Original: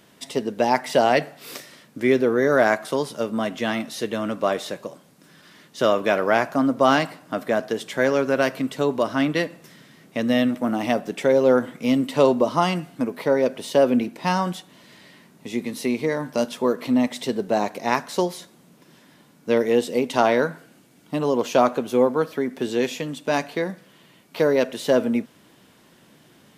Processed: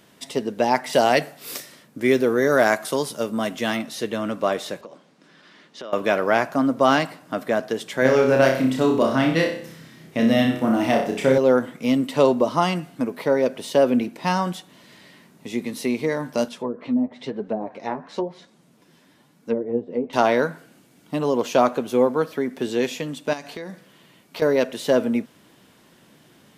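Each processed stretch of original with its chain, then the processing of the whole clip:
0:00.93–0:03.77: high-shelf EQ 5,400 Hz +10 dB + one half of a high-frequency compander decoder only
0:04.81–0:05.93: band-pass filter 200–4,900 Hz + downward compressor 4 to 1, threshold −35 dBFS
0:08.02–0:11.38: low-shelf EQ 170 Hz +7.5 dB + flutter between parallel walls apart 5.3 metres, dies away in 0.52 s
0:16.48–0:20.13: treble cut that deepens with the level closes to 510 Hz, closed at −16 dBFS + flanger 1 Hz, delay 3.5 ms, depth 9.1 ms, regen +39%
0:23.33–0:24.42: dynamic equaliser 5,900 Hz, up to +5 dB, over −45 dBFS, Q 0.76 + downward compressor, threshold −30 dBFS
whole clip: no processing

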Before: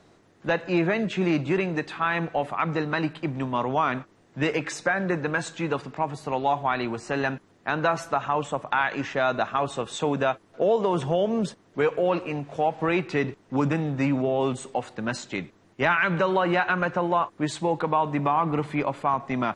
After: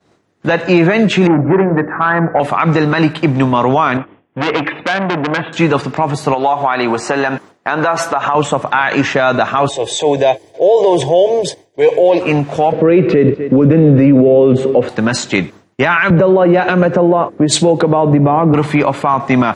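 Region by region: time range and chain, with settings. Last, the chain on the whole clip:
0:01.27–0:02.40: Butterworth low-pass 1,800 Hz 48 dB per octave + mains-hum notches 60/120/180/240/300/360/420/480/540/600 Hz + saturating transformer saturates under 570 Hz
0:03.97–0:05.53: Chebyshev low-pass with heavy ripple 3,400 Hz, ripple 3 dB + parametric band 280 Hz +7.5 dB 0.23 octaves + saturating transformer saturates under 2,700 Hz
0:06.34–0:08.35: high-pass filter 220 Hz 6 dB per octave + parametric band 880 Hz +5 dB 2 octaves + downward compressor 5 to 1, threshold −27 dBFS
0:09.69–0:12.21: transient designer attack −7 dB, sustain +3 dB + phaser with its sweep stopped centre 520 Hz, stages 4 + notch comb filter 1,400 Hz
0:12.72–0:14.89: band-pass filter 100–2,900 Hz + low shelf with overshoot 640 Hz +7.5 dB, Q 3 + single-tap delay 249 ms −23.5 dB
0:16.10–0:18.54: low shelf with overshoot 740 Hz +8.5 dB, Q 1.5 + downward compressor 16 to 1, threshold −22 dBFS + multiband upward and downward expander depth 100%
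whole clip: high-pass filter 58 Hz; downward expander −46 dBFS; boost into a limiter +18.5 dB; level −1 dB

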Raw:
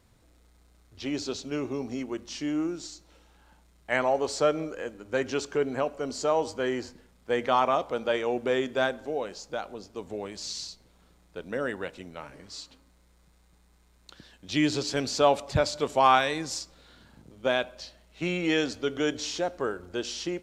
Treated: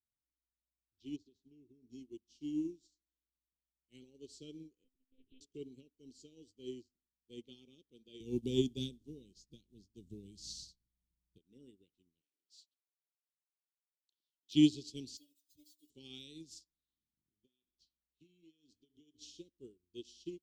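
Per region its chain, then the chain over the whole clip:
0:01.16–0:01.90: high-shelf EQ 2,400 Hz −11.5 dB + downward compressor 16 to 1, threshold −32 dBFS
0:04.84–0:05.41: downward compressor 2 to 1, threshold −38 dBFS + one-pitch LPC vocoder at 8 kHz 260 Hz
0:08.20–0:11.38: bass and treble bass +14 dB, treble +7 dB + notch filter 7,300 Hz, Q 20
0:12.21–0:14.55: high-pass filter 630 Hz + leveller curve on the samples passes 1
0:15.17–0:15.90: spike at every zero crossing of −21.5 dBFS + stiff-string resonator 300 Hz, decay 0.2 s, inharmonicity 0.002
0:16.59–0:19.21: downward compressor 12 to 1, threshold −34 dBFS + double-tracking delay 27 ms −13.5 dB
whole clip: elliptic band-stop filter 360–3,100 Hz, stop band 40 dB; expander for the loud parts 2.5 to 1, over −49 dBFS; level +1 dB

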